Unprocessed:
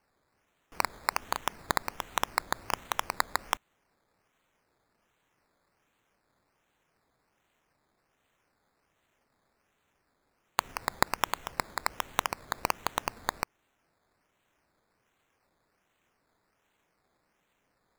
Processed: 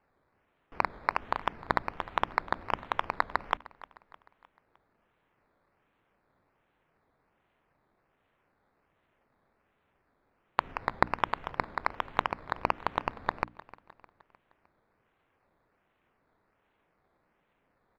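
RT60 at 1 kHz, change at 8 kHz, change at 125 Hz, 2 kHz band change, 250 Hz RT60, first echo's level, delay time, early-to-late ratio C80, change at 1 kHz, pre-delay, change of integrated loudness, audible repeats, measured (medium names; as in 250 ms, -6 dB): no reverb, under -20 dB, +2.5 dB, 0.0 dB, no reverb, -19.5 dB, 306 ms, no reverb, +1.5 dB, no reverb, 0.0 dB, 3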